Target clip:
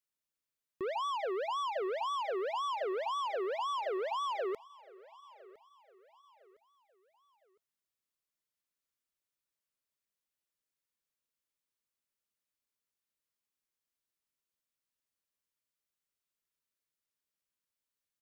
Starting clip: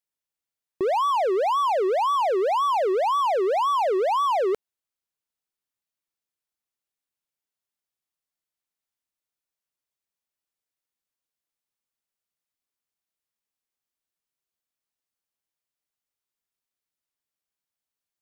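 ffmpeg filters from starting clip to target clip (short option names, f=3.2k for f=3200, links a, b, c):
-filter_complex "[0:a]equalizer=f=850:t=o:w=0.24:g=-5,asplit=2[a][b];[b]acrusher=bits=4:mode=log:mix=0:aa=0.000001,volume=-11.5dB[c];[a][c]amix=inputs=2:normalize=0,asoftclip=type=tanh:threshold=-29dB,asuperstop=centerf=730:order=20:qfactor=7.7,aecho=1:1:1009|2018|3027:0.0841|0.0345|0.0141,volume=-4.5dB"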